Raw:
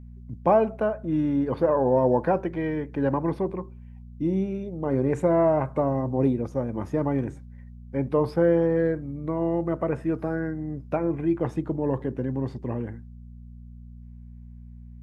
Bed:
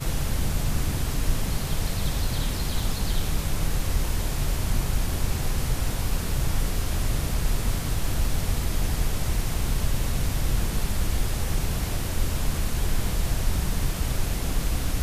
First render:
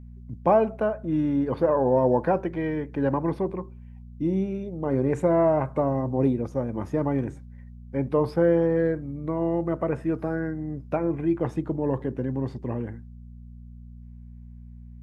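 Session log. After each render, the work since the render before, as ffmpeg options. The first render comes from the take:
-af anull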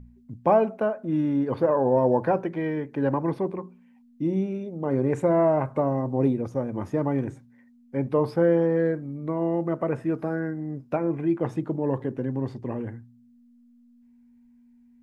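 -af "bandreject=f=60:t=h:w=4,bandreject=f=120:t=h:w=4,bandreject=f=180:t=h:w=4"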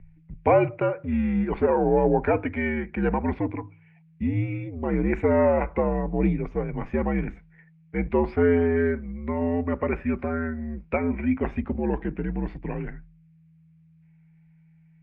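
-af "lowpass=f=2.4k:t=q:w=5,afreqshift=-79"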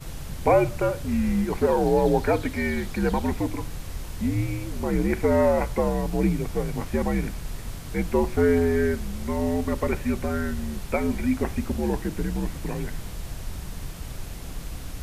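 -filter_complex "[1:a]volume=-9.5dB[a];[0:a][a]amix=inputs=2:normalize=0"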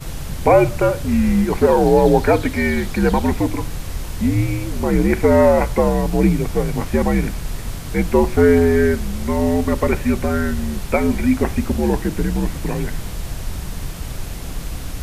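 -af "volume=7.5dB,alimiter=limit=-1dB:level=0:latency=1"

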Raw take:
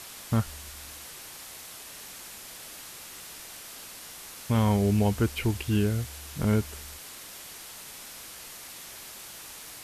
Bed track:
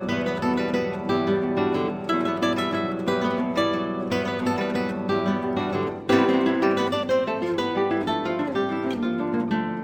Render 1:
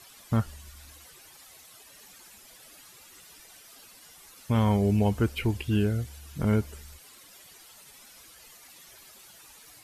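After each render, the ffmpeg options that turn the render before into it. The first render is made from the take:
-af "afftdn=nr=12:nf=-44"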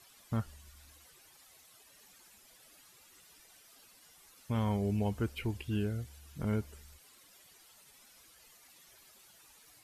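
-af "volume=-8.5dB"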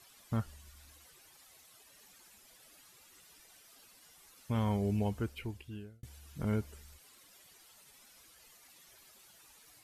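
-filter_complex "[0:a]asplit=2[a][b];[a]atrim=end=6.03,asetpts=PTS-STARTPTS,afade=t=out:st=4.99:d=1.04[c];[b]atrim=start=6.03,asetpts=PTS-STARTPTS,afade=t=in:d=0.004:c=hsin[d];[c][d]concat=n=2:v=0:a=1"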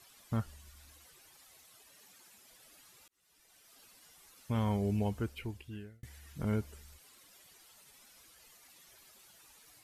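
-filter_complex "[0:a]asettb=1/sr,asplit=3[a][b][c];[a]atrim=end=1.934[d];[b]atrim=start=1.93:end=2.51,asetpts=PTS-STARTPTS,afade=t=in:d=0.004:c=qsin,afade=t=out:st=0.576:d=0.004:c=qsin,highpass=95[e];[c]atrim=start=2.506[f];[d][e]acrossfade=d=0.004:c1=hsin:c2=qsin[g];[g][f]acrossfade=d=0.004:c1=qsin:c2=hsin,asettb=1/sr,asplit=3[h][i][j];[h]atrim=end=5.734[k];[i]atrim=start=5.73:end=6.33,asetpts=PTS-STARTPTS,afade=t=in:d=0.004:c=qsin,afade=t=out:st=0.596:d=0.004:c=qsin,equalizer=f=1.9k:t=o:w=0.33:g=13[l];[j]atrim=start=6.326[m];[k][l]acrossfade=d=0.004:c1=hsin:c2=qsin[n];[n][m]acrossfade=d=0.004:c1=qsin:c2=hsin,asplit=2[o][p];[o]atrim=end=3.08,asetpts=PTS-STARTPTS,afade=t=out:st=3.076:d=0.004:c=hsin[q];[p]atrim=start=3.08,asetpts=PTS-STARTPTS,afade=t=in:d=0.76[r];[q][r]concat=n=2:v=0:a=1"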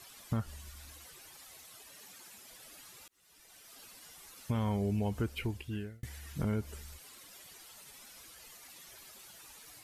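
-filter_complex "[0:a]asplit=2[a][b];[b]alimiter=level_in=4.5dB:limit=-24dB:level=0:latency=1:release=105,volume=-4.5dB,volume=1dB[c];[a][c]amix=inputs=2:normalize=0,acompressor=threshold=-30dB:ratio=2.5"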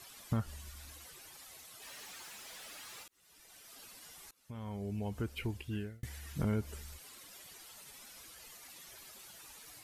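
-filter_complex "[0:a]asplit=3[a][b][c];[a]afade=t=out:st=1.81:d=0.02[d];[b]asplit=2[e][f];[f]highpass=f=720:p=1,volume=21dB,asoftclip=type=tanh:threshold=-40.5dB[g];[e][g]amix=inputs=2:normalize=0,lowpass=f=4.9k:p=1,volume=-6dB,afade=t=in:st=1.81:d=0.02,afade=t=out:st=3.02:d=0.02[h];[c]afade=t=in:st=3.02:d=0.02[i];[d][h][i]amix=inputs=3:normalize=0,asplit=2[j][k];[j]atrim=end=4.31,asetpts=PTS-STARTPTS,afade=t=out:st=4.306:d=0.004:c=hsin:silence=0.0668344[l];[k]atrim=start=4.31,asetpts=PTS-STARTPTS,afade=t=in:d=1.46:silence=0.0668344[m];[l][m]concat=n=2:v=0:a=1"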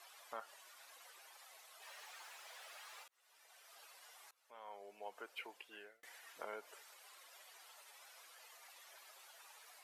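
-af "highpass=f=580:w=0.5412,highpass=f=580:w=1.3066,highshelf=f=3k:g=-10.5"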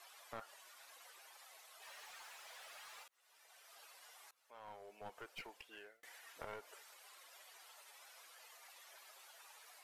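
-af "aeval=exprs='clip(val(0),-1,0.00299)':c=same"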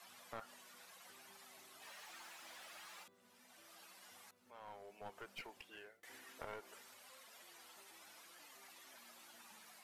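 -filter_complex "[1:a]volume=-49dB[a];[0:a][a]amix=inputs=2:normalize=0"

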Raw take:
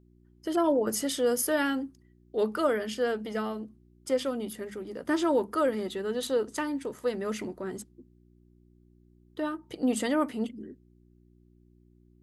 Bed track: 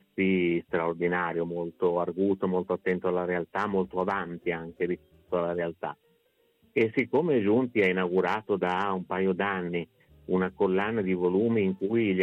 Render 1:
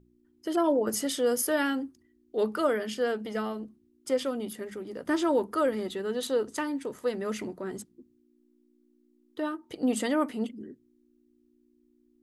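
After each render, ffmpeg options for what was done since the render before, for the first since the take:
-af "bandreject=f=60:t=h:w=4,bandreject=f=120:t=h:w=4,bandreject=f=180:t=h:w=4"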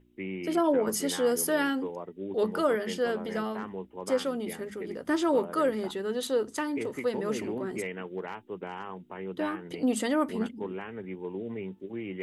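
-filter_complex "[1:a]volume=-11.5dB[a];[0:a][a]amix=inputs=2:normalize=0"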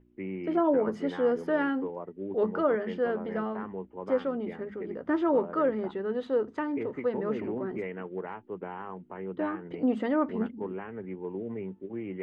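-af "lowpass=1.9k,aemphasis=mode=reproduction:type=cd"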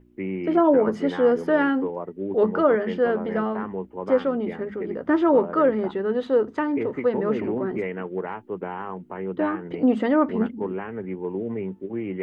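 -af "volume=7dB"

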